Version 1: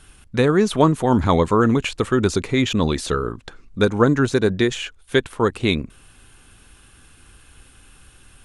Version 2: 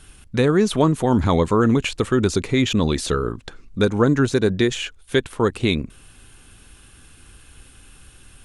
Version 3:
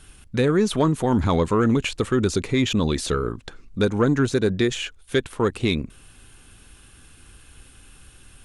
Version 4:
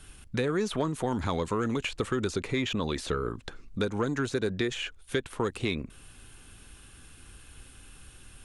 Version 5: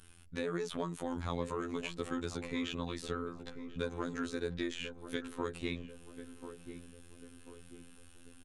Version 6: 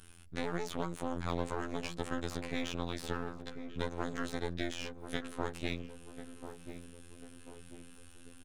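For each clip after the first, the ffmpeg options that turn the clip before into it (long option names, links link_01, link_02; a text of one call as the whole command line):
ffmpeg -i in.wav -filter_complex "[0:a]equalizer=frequency=1100:width_type=o:width=2:gain=-3,asplit=2[link_01][link_02];[link_02]alimiter=limit=-12dB:level=0:latency=1:release=197,volume=0.5dB[link_03];[link_01][link_03]amix=inputs=2:normalize=0,volume=-4dB" out.wav
ffmpeg -i in.wav -af "asoftclip=type=tanh:threshold=-6.5dB,volume=-1.5dB" out.wav
ffmpeg -i in.wav -filter_complex "[0:a]acrossover=split=440|3000[link_01][link_02][link_03];[link_01]acompressor=threshold=-29dB:ratio=4[link_04];[link_02]acompressor=threshold=-28dB:ratio=4[link_05];[link_03]acompressor=threshold=-40dB:ratio=4[link_06];[link_04][link_05][link_06]amix=inputs=3:normalize=0,volume=-2dB" out.wav
ffmpeg -i in.wav -filter_complex "[0:a]afftfilt=real='hypot(re,im)*cos(PI*b)':imag='0':win_size=2048:overlap=0.75,asplit=2[link_01][link_02];[link_02]adelay=1041,lowpass=frequency=930:poles=1,volume=-9.5dB,asplit=2[link_03][link_04];[link_04]adelay=1041,lowpass=frequency=930:poles=1,volume=0.51,asplit=2[link_05][link_06];[link_06]adelay=1041,lowpass=frequency=930:poles=1,volume=0.51,asplit=2[link_07][link_08];[link_08]adelay=1041,lowpass=frequency=930:poles=1,volume=0.51,asplit=2[link_09][link_10];[link_10]adelay=1041,lowpass=frequency=930:poles=1,volume=0.51,asplit=2[link_11][link_12];[link_12]adelay=1041,lowpass=frequency=930:poles=1,volume=0.51[link_13];[link_01][link_03][link_05][link_07][link_09][link_11][link_13]amix=inputs=7:normalize=0,volume=-5dB" out.wav
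ffmpeg -i in.wav -af "aeval=exprs='max(val(0),0)':channel_layout=same,volume=2.5dB" out.wav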